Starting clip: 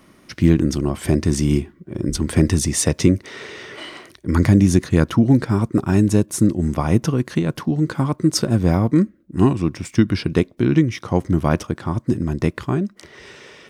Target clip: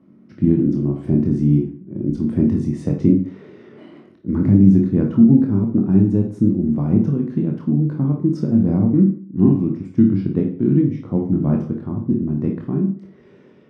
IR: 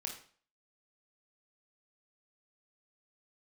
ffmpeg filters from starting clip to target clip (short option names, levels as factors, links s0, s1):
-filter_complex "[0:a]bandpass=f=210:t=q:w=1.4:csg=0[s0];[1:a]atrim=start_sample=2205[s1];[s0][s1]afir=irnorm=-1:irlink=0,volume=1.78"